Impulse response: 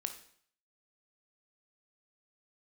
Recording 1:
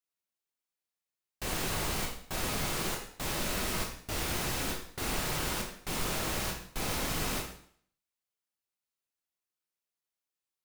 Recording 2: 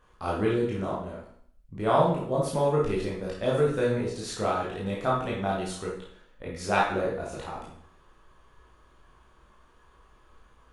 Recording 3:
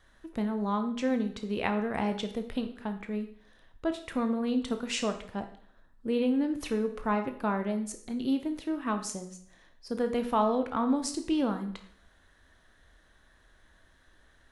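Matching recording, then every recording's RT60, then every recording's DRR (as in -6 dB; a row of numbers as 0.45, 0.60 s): 3; 0.60, 0.60, 0.60 s; 0.0, -6.0, 6.5 dB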